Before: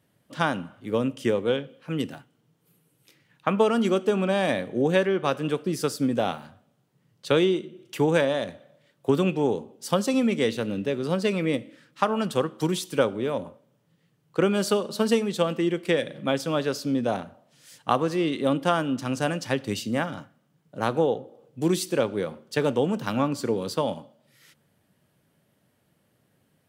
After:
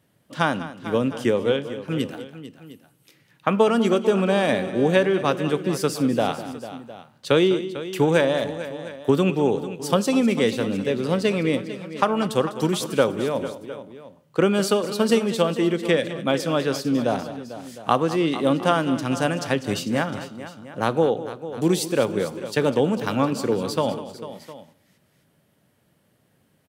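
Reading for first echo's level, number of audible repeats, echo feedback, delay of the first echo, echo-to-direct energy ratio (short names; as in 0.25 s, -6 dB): -14.5 dB, 3, no steady repeat, 0.2 s, -10.5 dB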